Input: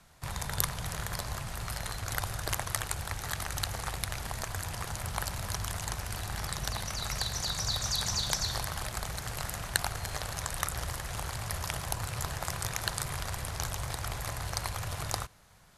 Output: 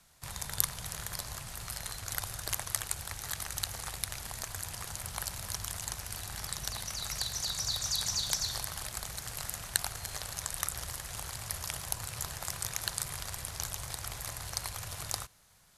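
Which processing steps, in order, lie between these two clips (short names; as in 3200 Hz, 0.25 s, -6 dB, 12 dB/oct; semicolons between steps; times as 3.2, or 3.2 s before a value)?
high shelf 3100 Hz +10 dB; gain -7.5 dB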